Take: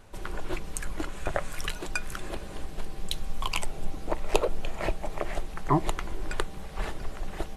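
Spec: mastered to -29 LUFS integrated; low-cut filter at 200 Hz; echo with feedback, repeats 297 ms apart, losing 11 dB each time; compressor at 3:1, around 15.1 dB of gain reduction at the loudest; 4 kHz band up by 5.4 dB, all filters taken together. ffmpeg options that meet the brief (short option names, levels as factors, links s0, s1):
-af "highpass=200,equalizer=f=4000:t=o:g=7,acompressor=threshold=0.0112:ratio=3,aecho=1:1:297|594|891:0.282|0.0789|0.0221,volume=4.22"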